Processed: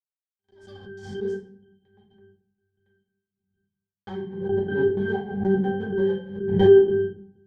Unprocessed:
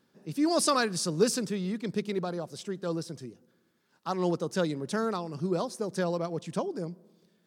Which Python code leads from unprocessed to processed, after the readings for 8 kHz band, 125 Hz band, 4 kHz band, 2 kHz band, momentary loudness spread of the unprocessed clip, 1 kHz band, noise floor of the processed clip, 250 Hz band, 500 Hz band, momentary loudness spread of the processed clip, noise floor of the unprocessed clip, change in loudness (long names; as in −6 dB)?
below −25 dB, +4.0 dB, can't be measured, +2.5 dB, 12 LU, −4.0 dB, below −85 dBFS, +3.5 dB, +9.0 dB, 20 LU, −70 dBFS, +8.5 dB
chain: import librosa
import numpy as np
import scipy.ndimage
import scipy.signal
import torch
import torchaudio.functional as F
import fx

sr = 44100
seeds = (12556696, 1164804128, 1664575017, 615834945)

y = fx.filter_sweep_bandpass(x, sr, from_hz=7200.0, to_hz=700.0, start_s=3.91, end_s=4.44, q=2.6)
y = scipy.signal.sosfilt(scipy.signal.butter(4, 95.0, 'highpass', fs=sr, output='sos'), y)
y = fx.env_lowpass(y, sr, base_hz=870.0, full_db=-34.5)
y = fx.high_shelf(y, sr, hz=11000.0, db=6.0)
y = fx.level_steps(y, sr, step_db=11)
y = fx.riaa(y, sr, side='playback')
y = fx.fuzz(y, sr, gain_db=55.0, gate_db=-56.0)
y = fx.rotary(y, sr, hz=6.0)
y = fx.octave_resonator(y, sr, note='G', decay_s=0.77)
y = fx.step_gate(y, sr, bpm=157, pattern='x.xx...x.x', floor_db=-24.0, edge_ms=4.5)
y = fx.room_shoebox(y, sr, seeds[0], volume_m3=70.0, walls='mixed', distance_m=1.1)
y = fx.pre_swell(y, sr, db_per_s=68.0)
y = F.gain(torch.from_numpy(y), 8.5).numpy()